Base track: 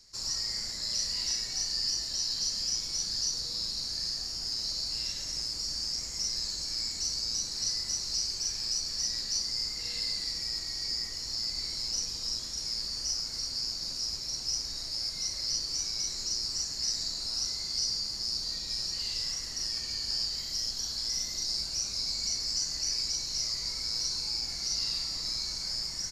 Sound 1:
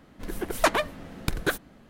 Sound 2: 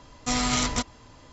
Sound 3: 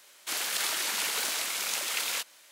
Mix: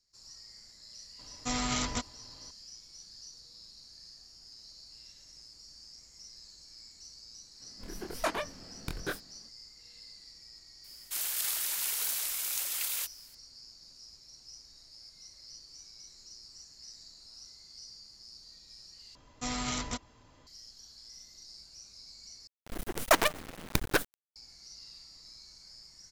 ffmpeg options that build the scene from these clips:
ffmpeg -i bed.wav -i cue0.wav -i cue1.wav -i cue2.wav -filter_complex "[2:a]asplit=2[link_01][link_02];[1:a]asplit=2[link_03][link_04];[0:a]volume=-18.5dB[link_05];[link_03]flanger=delay=22.5:depth=5:speed=1.4[link_06];[3:a]aemphasis=mode=production:type=bsi[link_07];[link_04]acrusher=bits=4:dc=4:mix=0:aa=0.000001[link_08];[link_05]asplit=3[link_09][link_10][link_11];[link_09]atrim=end=19.154[link_12];[link_02]atrim=end=1.32,asetpts=PTS-STARTPTS,volume=-9.5dB[link_13];[link_10]atrim=start=20.466:end=22.474[link_14];[link_08]atrim=end=1.89,asetpts=PTS-STARTPTS,volume=-1.5dB[link_15];[link_11]atrim=start=24.356[link_16];[link_01]atrim=end=1.32,asetpts=PTS-STARTPTS,volume=-7dB,afade=type=in:duration=0.004:curve=hsin,afade=type=out:start_time=1.316:duration=0.004:curve=hsin,adelay=1190[link_17];[link_06]atrim=end=1.89,asetpts=PTS-STARTPTS,volume=-6.5dB,afade=type=in:duration=0.004:curve=hsin,afade=type=out:start_time=1.886:duration=0.004:curve=hsin,adelay=7600[link_18];[link_07]atrim=end=2.51,asetpts=PTS-STARTPTS,volume=-11.5dB,afade=type=in:duration=0.004:curve=hsin,afade=type=out:start_time=2.506:duration=0.004:curve=hsin,adelay=10840[link_19];[link_12][link_13]acrossfade=duration=0.004:curve1=hsin:curve2=hsin[link_20];[link_20][link_14]acrossfade=duration=0.004:curve1=hsin:curve2=hsin[link_21];[link_21][link_15]acrossfade=duration=0.004:curve1=hsin:curve2=hsin[link_22];[link_22][link_16]acrossfade=duration=0.004:curve1=hsin:curve2=hsin[link_23];[link_23][link_17][link_18][link_19]amix=inputs=4:normalize=0" out.wav

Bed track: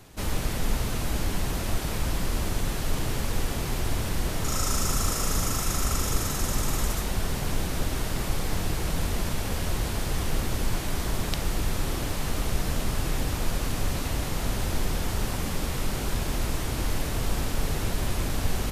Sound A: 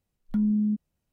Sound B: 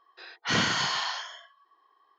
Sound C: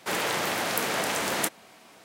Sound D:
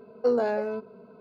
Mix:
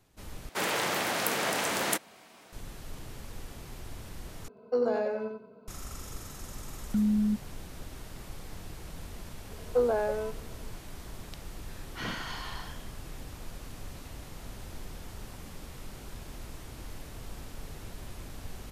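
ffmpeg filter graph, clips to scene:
ffmpeg -i bed.wav -i cue0.wav -i cue1.wav -i cue2.wav -i cue3.wav -filter_complex "[4:a]asplit=2[link_01][link_02];[0:a]volume=-15.5dB[link_03];[link_01]aecho=1:1:92|184|276:0.596|0.149|0.0372[link_04];[link_02]highpass=300,lowpass=2400[link_05];[2:a]aemphasis=mode=reproduction:type=50fm[link_06];[link_03]asplit=3[link_07][link_08][link_09];[link_07]atrim=end=0.494[link_10];[3:a]atrim=end=2.04,asetpts=PTS-STARTPTS,volume=-2dB[link_11];[link_08]atrim=start=2.526:end=4.484[link_12];[link_04]atrim=end=1.2,asetpts=PTS-STARTPTS,volume=-5dB[link_13];[link_09]atrim=start=5.676[link_14];[1:a]atrim=end=1.12,asetpts=PTS-STARTPTS,volume=-2dB,afade=type=in:duration=0.004:curve=hsin,afade=type=out:start_time=1.116:duration=0.004:curve=hsin,adelay=6600[link_15];[link_05]atrim=end=1.2,asetpts=PTS-STARTPTS,volume=-1.5dB,afade=type=in:duration=0.004:curve=hsin,afade=type=out:start_time=1.196:duration=0.004:curve=hsin,adelay=9510[link_16];[link_06]atrim=end=2.18,asetpts=PTS-STARTPTS,volume=-10.5dB,afade=type=in:duration=0.004:curve=hsin,afade=type=out:start_time=2.176:duration=0.004:curve=hsin,adelay=11500[link_17];[link_10][link_11]acrossfade=duration=0.004:curve1=hsin:curve2=hsin[link_18];[link_18][link_12]acrossfade=duration=0.004:curve1=hsin:curve2=hsin[link_19];[link_19][link_13]acrossfade=duration=0.004:curve1=hsin:curve2=hsin[link_20];[link_20][link_14]acrossfade=duration=0.004:curve1=hsin:curve2=hsin[link_21];[link_21][link_15][link_16][link_17]amix=inputs=4:normalize=0" out.wav

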